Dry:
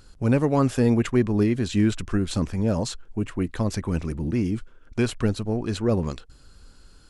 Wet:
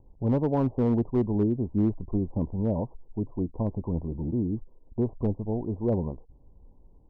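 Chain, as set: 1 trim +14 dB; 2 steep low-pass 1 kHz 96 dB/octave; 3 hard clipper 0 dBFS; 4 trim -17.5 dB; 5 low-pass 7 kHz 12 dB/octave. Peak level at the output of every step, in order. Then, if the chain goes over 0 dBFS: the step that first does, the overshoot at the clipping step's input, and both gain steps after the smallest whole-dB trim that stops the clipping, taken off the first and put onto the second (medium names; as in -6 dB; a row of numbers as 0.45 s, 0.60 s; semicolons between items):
+5.0 dBFS, +4.5 dBFS, 0.0 dBFS, -17.5 dBFS, -17.5 dBFS; step 1, 4.5 dB; step 1 +9 dB, step 4 -12.5 dB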